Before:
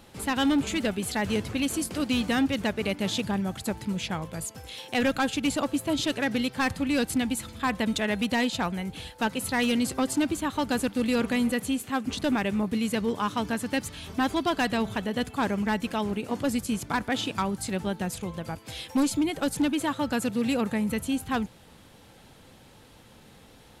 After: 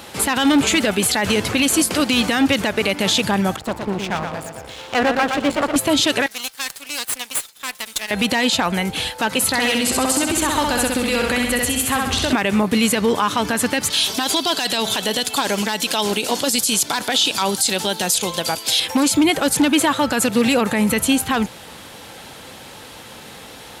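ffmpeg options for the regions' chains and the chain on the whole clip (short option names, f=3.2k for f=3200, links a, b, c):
-filter_complex "[0:a]asettb=1/sr,asplit=3[a][b][c];[a]atrim=end=3.564[d];[b]atrim=start=3.56:end=5.76,asetpts=PTS-STARTPTS,afade=t=in:d=0.004:c=qsin,afade=t=out:st=2.196:d=0.004:c=qsin,lowpass=f=1.1k:p=1,aeval=exprs='max(val(0),0)':c=same,aecho=1:1:118|236|354|472:0.501|0.175|0.0614|0.0215,atrim=end_sample=97020[e];[c]atrim=start=5.756[f];[d][e]acrossfade=d=0.004:c1=hsin:c2=qsin[g];[g][f]acrossfade=d=0.004:c1=qsin:c2=hsin,asettb=1/sr,asplit=3[h][i][j];[h]atrim=end=6.264[k];[i]atrim=start=6.26:end=8.11,asetpts=PTS-STARTPTS,afade=t=in:d=0.004:c=qsin,afade=t=out:st=1.846:d=0.004:c=qsin,agate=range=-33dB:threshold=-37dB:ratio=3:release=100:detection=peak,aderivative,aeval=exprs='max(val(0),0)':c=same[l];[j]atrim=start=8.106[m];[k][l]acrossfade=d=0.004:c1=hsin:c2=qsin[n];[n][m]acrossfade=d=0.004:c1=qsin:c2=hsin,asettb=1/sr,asplit=3[o][p][q];[o]atrim=end=9.474[r];[p]atrim=start=9.47:end=12.33,asetpts=PTS-STARTPTS,afade=t=in:d=0.004:c=qsin,afade=t=out:st=2.856:d=0.004:c=qsin,asubboost=boost=11:cutoff=73,acompressor=threshold=-30dB:ratio=10:attack=3.2:release=140:knee=1:detection=peak,aecho=1:1:65|130|195|260|325|390|455:0.668|0.354|0.188|0.0995|0.0527|0.0279|0.0148,atrim=end_sample=126126[s];[q]atrim=start=12.326[t];[r][s]acrossfade=d=0.004:c1=hsin:c2=qsin[u];[u][t]acrossfade=d=0.004:c1=qsin:c2=hsin,asettb=1/sr,asplit=3[v][w][x];[v]atrim=end=13.904[y];[w]atrim=start=13.9:end=18.8,asetpts=PTS-STARTPTS,afade=t=in:d=0.004:c=qsin,afade=t=out:st=4.896:d=0.004:c=qsin,highpass=f=290:p=1,highshelf=f=2.8k:t=q:w=1.5:g=8,bandreject=f=1.2k:w=16[z];[x]atrim=start=18.796[aa];[y][z]acrossfade=d=0.004:c1=hsin:c2=qsin[ab];[ab][aa]acrossfade=d=0.004:c1=qsin:c2=hsin,highpass=41,lowshelf=f=320:g=-11.5,alimiter=level_in=24.5dB:limit=-1dB:release=50:level=0:latency=1,volume=-6.5dB"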